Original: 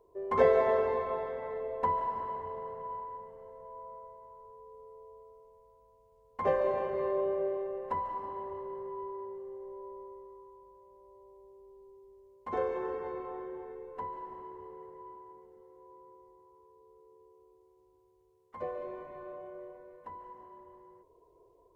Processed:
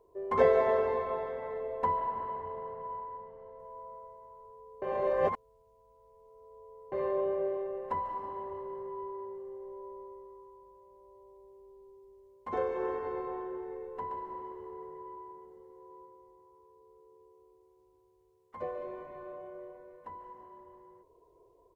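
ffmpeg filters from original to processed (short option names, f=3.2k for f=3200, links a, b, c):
-filter_complex "[0:a]asettb=1/sr,asplit=3[a][b][c];[a]atrim=end=1.974[d];[b]atrim=start=1.97:end=3.59,asetpts=PTS-STARTPTS,afade=t=in:d=0.004:c=qsin,afade=t=out:st=1.616:d=0.004:c=qsin,lowpass=3.8k[e];[c]atrim=start=3.586[f];[d][e]acrossfade=d=0.004:c1=hsin:c2=qsin[g];[g][f]acrossfade=d=0.004:c1=qsin:c2=hsin,asplit=3[h][i][j];[h]afade=t=out:st=12.78:d=0.02[k];[i]aecho=1:1:125:0.531,afade=t=in:st=12.78:d=0.02,afade=t=out:st=16.05:d=0.02[l];[j]afade=t=in:st=16.05:d=0.02[m];[k][l][m]amix=inputs=3:normalize=0,asplit=3[n][o][p];[n]atrim=end=4.822[q];[o]atrim=start=4.818:end=6.922,asetpts=PTS-STARTPTS,areverse[r];[p]atrim=start=6.918[s];[q][r]acrossfade=d=0.004:c1=hsin:c2=hsin[t];[t][s]acrossfade=d=0.004:c1=hsin:c2=hsin"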